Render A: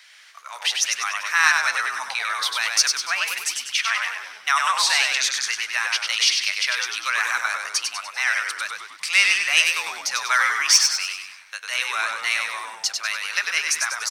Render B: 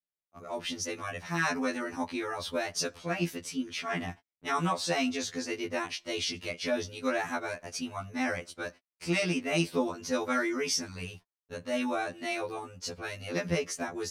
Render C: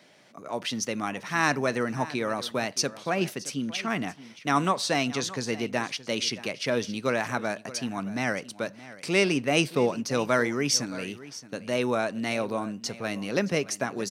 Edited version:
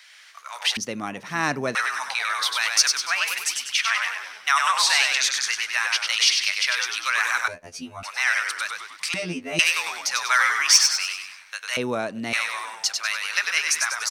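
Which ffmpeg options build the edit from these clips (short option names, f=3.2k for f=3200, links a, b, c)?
-filter_complex "[2:a]asplit=2[a][b];[1:a]asplit=2[c][d];[0:a]asplit=5[e][f][g][h][i];[e]atrim=end=0.772[j];[a]atrim=start=0.768:end=1.752[k];[f]atrim=start=1.748:end=7.482[l];[c]atrim=start=7.478:end=8.032[m];[g]atrim=start=8.028:end=9.142[n];[d]atrim=start=9.138:end=9.592[o];[h]atrim=start=9.588:end=11.772[p];[b]atrim=start=11.768:end=12.332[q];[i]atrim=start=12.328[r];[j][k]acrossfade=d=0.004:c1=hsin:c2=hsin[s];[s][l]acrossfade=d=0.004:c1=hsin:c2=hsin[t];[t][m]acrossfade=d=0.004:c1=hsin:c2=hsin[u];[u][n]acrossfade=d=0.004:c1=hsin:c2=hsin[v];[v][o]acrossfade=d=0.004:c1=hsin:c2=hsin[w];[w][p]acrossfade=d=0.004:c1=hsin:c2=hsin[x];[x][q]acrossfade=d=0.004:c1=hsin:c2=hsin[y];[y][r]acrossfade=d=0.004:c1=hsin:c2=hsin"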